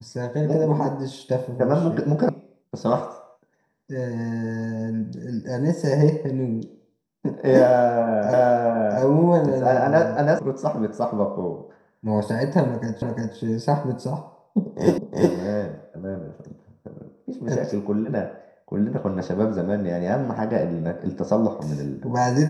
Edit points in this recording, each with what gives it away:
2.29 sound cut off
8.33 repeat of the last 0.68 s
10.39 sound cut off
13.02 repeat of the last 0.35 s
14.98 repeat of the last 0.36 s

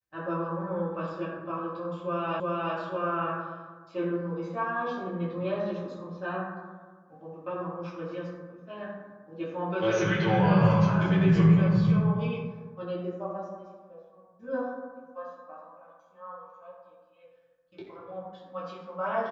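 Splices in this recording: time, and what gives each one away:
2.4 repeat of the last 0.36 s

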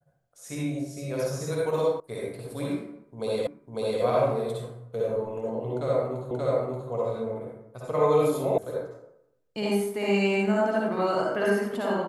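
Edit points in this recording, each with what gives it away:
2 sound cut off
3.47 repeat of the last 0.55 s
6.31 repeat of the last 0.58 s
8.58 sound cut off

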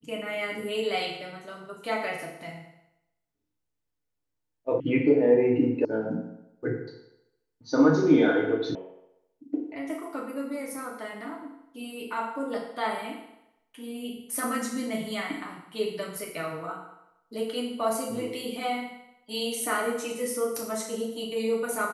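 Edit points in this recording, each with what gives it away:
4.8 sound cut off
5.85 sound cut off
8.75 sound cut off

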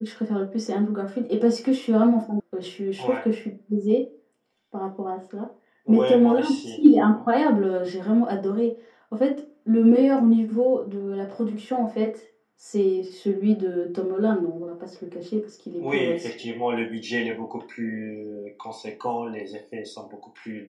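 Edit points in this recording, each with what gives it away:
2.4 sound cut off

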